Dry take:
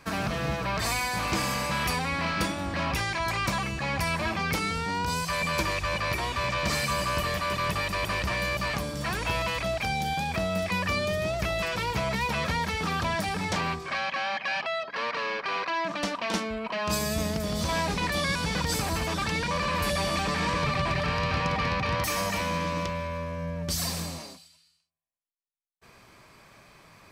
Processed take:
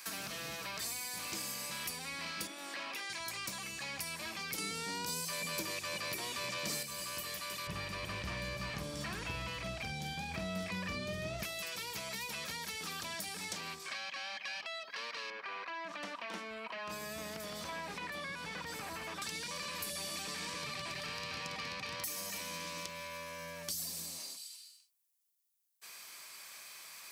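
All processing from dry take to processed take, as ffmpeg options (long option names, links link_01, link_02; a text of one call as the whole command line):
ffmpeg -i in.wav -filter_complex "[0:a]asettb=1/sr,asplit=3[link_01][link_02][link_03];[link_01]atrim=end=2.474[link_04];[link_02]atrim=start=2.47:end=3.1,asetpts=PTS-STARTPTS,afade=type=in:duration=0.004:curve=qsin,afade=type=out:start_time=0.626:duration=0.004:curve=qsin,acrossover=split=3800[link_05][link_06];[link_06]acompressor=threshold=-50dB:ratio=4:attack=1:release=60[link_07];[link_05][link_07]amix=inputs=2:normalize=0,highpass=frequency=250:width=0.5412,highpass=frequency=250:width=1.3066[link_08];[link_03]atrim=start=3.096[link_09];[link_04][link_08]acrossfade=duration=0.004:curve1=hsin:curve2=qsin[link_10];[link_10][link_09]acrossfade=duration=0.004:curve1=qsin:curve2=hsin,asettb=1/sr,asplit=3[link_11][link_12][link_13];[link_11]atrim=end=4.584[link_14];[link_12]atrim=start=4.58:end=6.83,asetpts=PTS-STARTPTS,afade=type=in:duration=0.004:curve=qsin,afade=type=out:start_time=2.246:duration=0.004:curve=qsin,highpass=110,acontrast=84[link_15];[link_13]atrim=start=6.826[link_16];[link_14][link_15]acrossfade=duration=0.004:curve1=hsin:curve2=qsin[link_17];[link_17][link_16]acrossfade=duration=0.004:curve1=qsin:curve2=hsin,asettb=1/sr,asplit=3[link_18][link_19][link_20];[link_18]atrim=end=7.674[link_21];[link_19]atrim=start=7.67:end=11.43,asetpts=PTS-STARTPTS,afade=type=in:duration=0.004:curve=qsin,afade=type=out:start_time=3.756:duration=0.004:curve=qsin,aemphasis=mode=reproduction:type=riaa,asplit=2[link_22][link_23];[link_23]adelay=48,volume=-8dB[link_24];[link_22][link_24]amix=inputs=2:normalize=0,atrim=end_sample=165816[link_25];[link_20]atrim=start=11.426[link_26];[link_21][link_25]acrossfade=duration=0.004:curve1=hsin:curve2=qsin[link_27];[link_27][link_26]acrossfade=duration=0.004:curve1=qsin:curve2=hsin,asettb=1/sr,asplit=3[link_28][link_29][link_30];[link_28]atrim=end=15.304[link_31];[link_29]atrim=start=15.3:end=19.22,asetpts=PTS-STARTPTS,afade=type=in:duration=0.004:curve=qsin,afade=type=out:start_time=3.916:duration=0.004:curve=qsin,highshelf=frequency=4000:gain=-10,acrossover=split=2600[link_32][link_33];[link_33]acompressor=threshold=-53dB:ratio=4:attack=1:release=60[link_34];[link_32][link_34]amix=inputs=2:normalize=0[link_35];[link_30]atrim=start=19.216[link_36];[link_31][link_35]acrossfade=duration=0.004:curve1=hsin:curve2=qsin[link_37];[link_37][link_36]acrossfade=duration=0.004:curve1=qsin:curve2=hsin,aderivative,acrossover=split=440[link_38][link_39];[link_39]acompressor=threshold=-55dB:ratio=4[link_40];[link_38][link_40]amix=inputs=2:normalize=0,volume=12.5dB" out.wav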